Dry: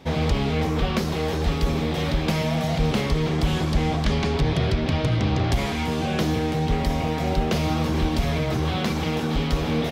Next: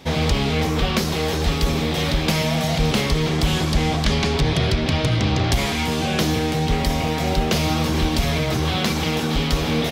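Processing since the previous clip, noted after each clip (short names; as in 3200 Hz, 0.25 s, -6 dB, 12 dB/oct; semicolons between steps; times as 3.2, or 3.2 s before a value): high shelf 2500 Hz +8 dB; gain +2 dB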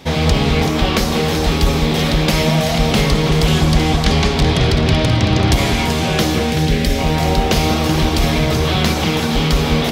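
spectral gain 6.51–6.98, 650–1400 Hz -11 dB; echo with dull and thin repeats by turns 0.191 s, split 1300 Hz, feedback 57%, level -4 dB; gain +4 dB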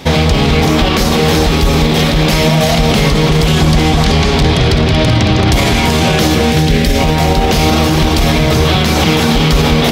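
maximiser +10 dB; gain -1 dB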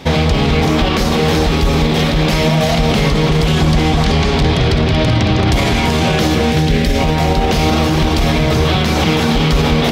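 high shelf 6500 Hz -7 dB; gain -2.5 dB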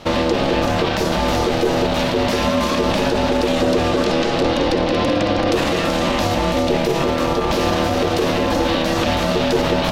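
ring modulator 410 Hz; gain -2 dB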